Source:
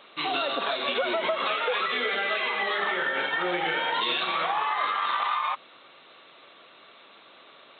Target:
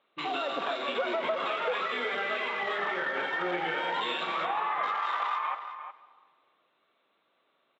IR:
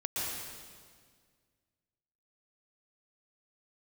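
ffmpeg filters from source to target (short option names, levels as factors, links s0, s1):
-filter_complex "[0:a]afwtdn=0.0126,highpass=62,highshelf=f=3800:g=-10.5,asplit=2[s0][s1];[s1]adelay=361.5,volume=0.316,highshelf=f=4000:g=-8.13[s2];[s0][s2]amix=inputs=2:normalize=0,asplit=2[s3][s4];[1:a]atrim=start_sample=2205[s5];[s4][s5]afir=irnorm=-1:irlink=0,volume=0.106[s6];[s3][s6]amix=inputs=2:normalize=0,volume=0.668"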